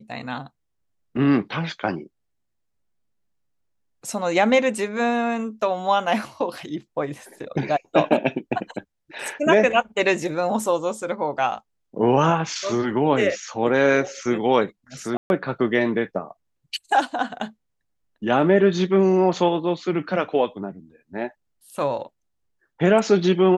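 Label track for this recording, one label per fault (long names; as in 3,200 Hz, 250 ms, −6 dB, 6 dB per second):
15.170000	15.300000	drop-out 131 ms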